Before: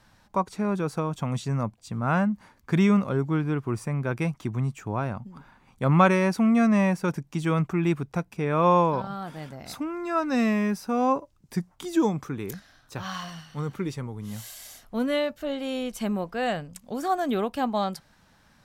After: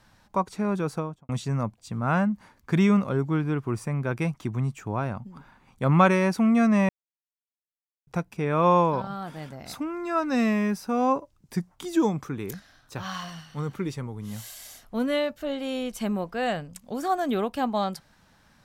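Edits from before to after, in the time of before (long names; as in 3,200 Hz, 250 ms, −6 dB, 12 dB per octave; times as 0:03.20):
0:00.90–0:01.29: fade out and dull
0:06.89–0:08.07: silence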